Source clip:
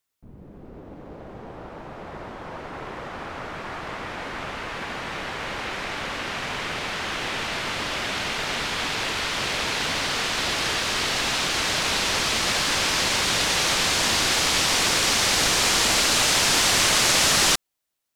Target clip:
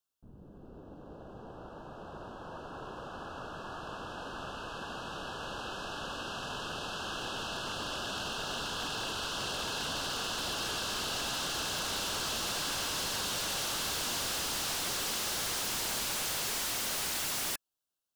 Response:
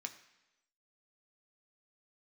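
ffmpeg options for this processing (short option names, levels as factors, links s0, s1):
-af "asuperstop=centerf=2100:order=20:qfactor=2.4,aeval=exprs='0.0841*(abs(mod(val(0)/0.0841+3,4)-2)-1)':c=same,volume=0.398"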